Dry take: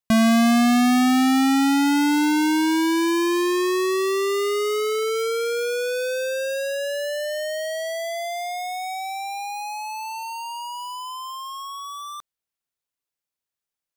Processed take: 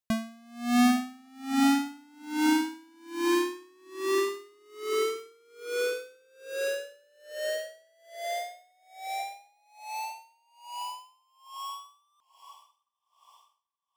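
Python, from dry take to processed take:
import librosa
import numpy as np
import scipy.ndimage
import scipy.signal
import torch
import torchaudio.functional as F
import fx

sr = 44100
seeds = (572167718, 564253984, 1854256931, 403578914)

y = fx.echo_diffused(x, sr, ms=762, feedback_pct=46, wet_db=-15.0)
y = y * 10.0 ** (-35 * (0.5 - 0.5 * np.cos(2.0 * np.pi * 1.2 * np.arange(len(y)) / sr)) / 20.0)
y = F.gain(torch.from_numpy(y), -2.5).numpy()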